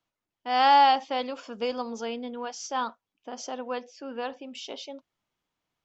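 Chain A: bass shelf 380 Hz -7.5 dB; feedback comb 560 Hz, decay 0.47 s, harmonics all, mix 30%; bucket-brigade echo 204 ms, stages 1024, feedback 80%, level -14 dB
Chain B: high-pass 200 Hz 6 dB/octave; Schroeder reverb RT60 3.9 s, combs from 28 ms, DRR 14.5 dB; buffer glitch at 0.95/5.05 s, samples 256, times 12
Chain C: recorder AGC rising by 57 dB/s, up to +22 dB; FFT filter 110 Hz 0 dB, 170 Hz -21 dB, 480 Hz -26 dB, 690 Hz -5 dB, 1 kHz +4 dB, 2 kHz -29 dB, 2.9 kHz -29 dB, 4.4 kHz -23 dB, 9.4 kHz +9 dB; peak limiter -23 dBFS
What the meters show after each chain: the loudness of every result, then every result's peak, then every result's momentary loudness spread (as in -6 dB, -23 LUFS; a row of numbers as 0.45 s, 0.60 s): -31.5 LUFS, -27.5 LUFS, -33.5 LUFS; -12.0 dBFS, -8.5 dBFS, -23.0 dBFS; 21 LU, 20 LU, 11 LU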